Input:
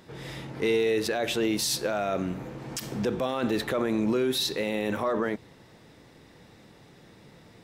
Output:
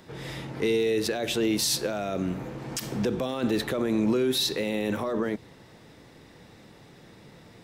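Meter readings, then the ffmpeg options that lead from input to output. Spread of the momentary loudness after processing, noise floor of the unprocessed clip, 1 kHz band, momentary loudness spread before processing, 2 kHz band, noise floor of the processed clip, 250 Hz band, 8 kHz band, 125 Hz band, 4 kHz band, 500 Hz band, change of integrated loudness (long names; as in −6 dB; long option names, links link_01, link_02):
10 LU, −54 dBFS, −3.0 dB, 11 LU, −1.5 dB, −52 dBFS, +1.5 dB, +2.0 dB, +2.0 dB, +1.5 dB, 0.0 dB, +0.5 dB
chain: -filter_complex "[0:a]acrossover=split=470|3000[link_01][link_02][link_03];[link_02]acompressor=threshold=-35dB:ratio=6[link_04];[link_01][link_04][link_03]amix=inputs=3:normalize=0,volume=2dB"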